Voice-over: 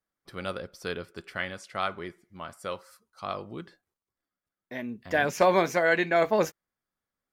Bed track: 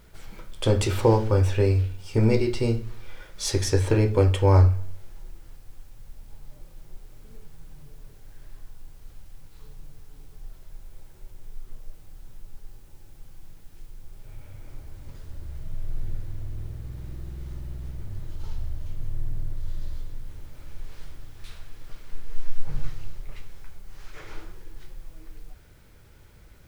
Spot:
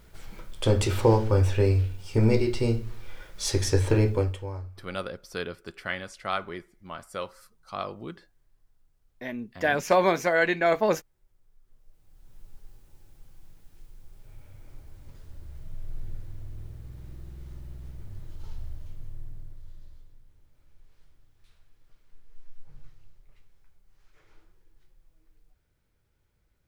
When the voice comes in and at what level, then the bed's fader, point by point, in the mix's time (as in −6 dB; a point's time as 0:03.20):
4.50 s, +0.5 dB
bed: 0:04.09 −1 dB
0:04.62 −23 dB
0:11.59 −23 dB
0:12.41 −6 dB
0:18.72 −6 dB
0:20.30 −20 dB